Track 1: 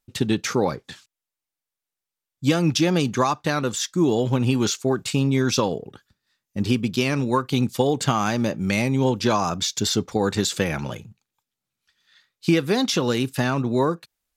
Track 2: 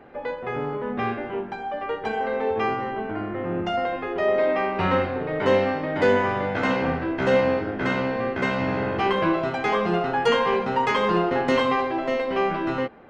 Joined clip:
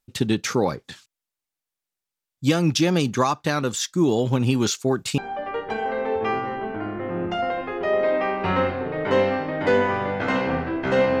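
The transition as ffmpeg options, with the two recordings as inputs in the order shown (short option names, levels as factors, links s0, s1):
-filter_complex "[0:a]apad=whole_dur=11.2,atrim=end=11.2,atrim=end=5.182[s0];[1:a]atrim=start=1.528:end=7.55[s1];[s0][s1]acrossfade=d=0.004:c1=hsin:c2=hsin"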